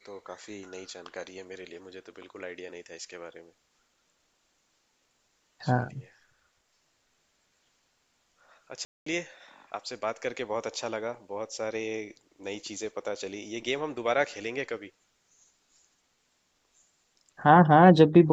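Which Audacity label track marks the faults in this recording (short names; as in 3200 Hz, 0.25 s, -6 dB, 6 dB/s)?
8.850000	9.060000	gap 0.214 s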